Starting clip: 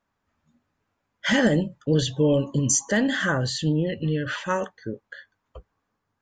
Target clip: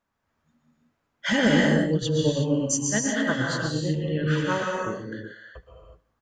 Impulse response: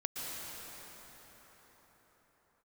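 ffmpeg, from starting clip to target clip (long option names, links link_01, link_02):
-filter_complex "[0:a]asettb=1/sr,asplit=3[link_01][link_02][link_03];[link_01]atrim=end=1.604[link_04];[link_02]atrim=start=1.6:end=3.94,asetpts=PTS-STARTPTS,afade=type=in:duration=0.004:curve=qsin,afade=type=out:start_time=2.336:duration=0.004:curve=qsin,tremolo=f=8.8:d=0.88[link_05];[link_03]atrim=start=3.936[link_06];[link_04][link_05]acrossfade=duration=0.004:curve1=hsin:curve2=qsin[link_07];[link_07][link_06]acrossfade=duration=0.004:curve1=qsin:curve2=hsin,aecho=1:1:74|148|222|296:0.075|0.042|0.0235|0.0132[link_08];[1:a]atrim=start_sample=2205,afade=type=out:start_time=0.43:duration=0.01,atrim=end_sample=19404[link_09];[link_08][link_09]afir=irnorm=-1:irlink=0"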